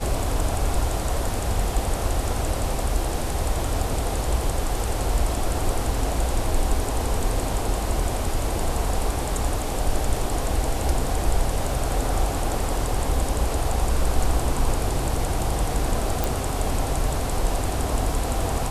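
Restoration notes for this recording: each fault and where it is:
0:16.24: click

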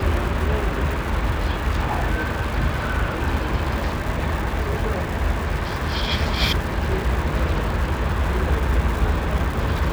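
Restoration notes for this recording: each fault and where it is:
surface crackle 250 per second −27 dBFS

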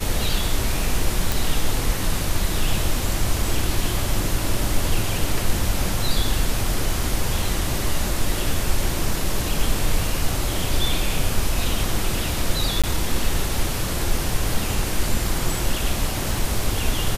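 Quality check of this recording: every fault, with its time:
0:01.32: click
0:12.82–0:12.84: drop-out 16 ms

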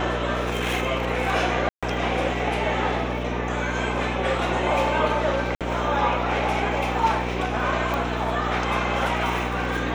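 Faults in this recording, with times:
mains hum 60 Hz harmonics 8 −29 dBFS
0:01.69–0:01.83: drop-out 136 ms
0:05.55–0:05.61: drop-out 57 ms
0:07.94: click −14 dBFS

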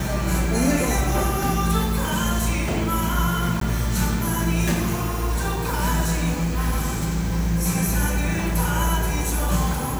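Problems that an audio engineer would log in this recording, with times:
0:03.60–0:03.61: drop-out 13 ms

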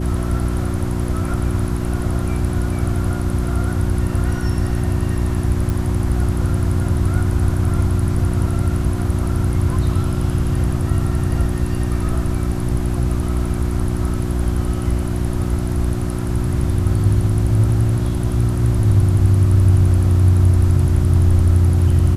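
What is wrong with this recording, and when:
mains hum 60 Hz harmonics 6 −22 dBFS
0:05.70: click

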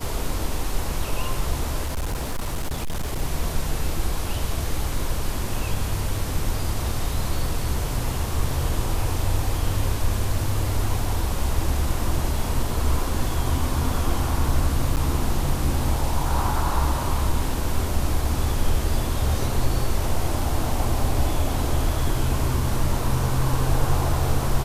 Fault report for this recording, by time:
0:01.86–0:03.22: clipping −22 dBFS
0:14.96–0:14.97: drop-out 8.2 ms

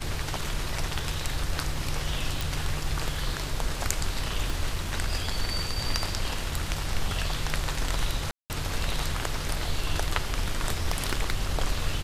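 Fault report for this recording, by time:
0:02.41: click
0:04.50: click
0:08.31–0:08.50: drop-out 189 ms
0:10.86–0:11.34: clipping −17.5 dBFS

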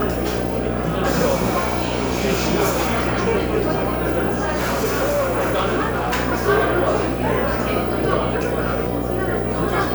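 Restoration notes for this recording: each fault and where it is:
mains buzz 60 Hz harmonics 13 −25 dBFS
0:04.28–0:06.20: clipping −15.5 dBFS

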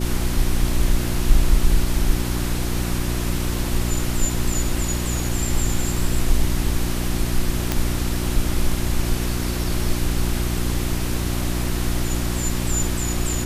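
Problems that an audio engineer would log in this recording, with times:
mains hum 60 Hz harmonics 6 −25 dBFS
0:07.72: click

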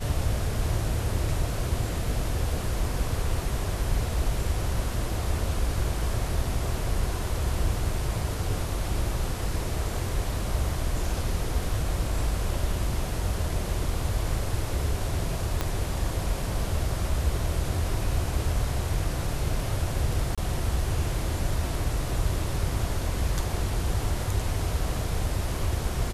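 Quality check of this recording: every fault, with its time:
0:15.61: click −11 dBFS
0:20.35–0:20.38: drop-out 26 ms

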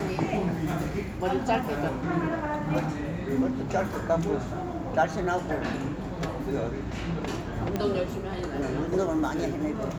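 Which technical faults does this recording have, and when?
0:07.76: click −15 dBFS

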